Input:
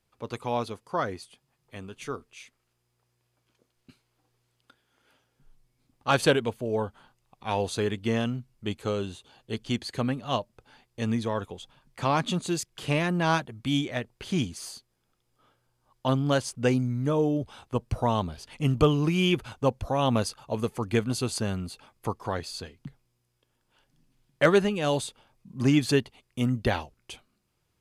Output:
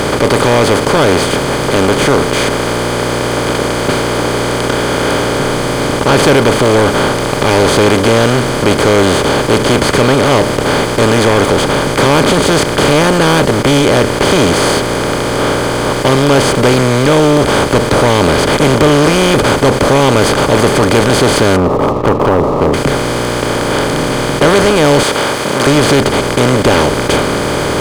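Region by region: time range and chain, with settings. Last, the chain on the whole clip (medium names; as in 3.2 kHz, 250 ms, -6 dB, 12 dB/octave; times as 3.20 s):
21.56–22.74 s: brick-wall FIR low-pass 1.3 kHz + tape noise reduction on one side only encoder only
25.03–25.67 s: companding laws mixed up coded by mu + Bessel high-pass 2.1 kHz
whole clip: spectral levelling over time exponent 0.2; band-stop 2.7 kHz, Q 8.9; waveshaping leveller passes 3; trim -2 dB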